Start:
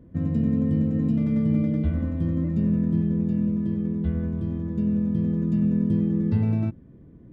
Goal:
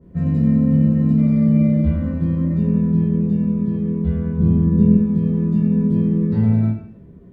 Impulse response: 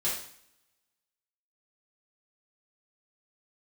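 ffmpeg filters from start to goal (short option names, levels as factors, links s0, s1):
-filter_complex "[0:a]asettb=1/sr,asplit=3[s0][s1][s2];[s0]atrim=end=4.384[s3];[s1]atrim=start=4.38:end=4.95,asetpts=PTS-STARTPTS,afade=t=in:d=0.004:c=qsin,afade=t=out:st=0.566:d=0.004:c=qsin,lowshelf=f=400:g=10[s4];[s2]atrim=start=4.946[s5];[s3][s4]acrossfade=d=0.004:c1=hsin:c2=qsin[s6];[s6][s5]acrossfade=d=0.004:c1=qsin:c2=hsin[s7];[1:a]atrim=start_sample=2205,asetrate=48510,aresample=44100[s8];[s7][s8]afir=irnorm=-1:irlink=0,adynamicequalizer=threshold=0.00631:dfrequency=2300:dqfactor=0.7:tfrequency=2300:tqfactor=0.7:attack=5:release=100:ratio=0.375:range=3:mode=cutabove:tftype=highshelf"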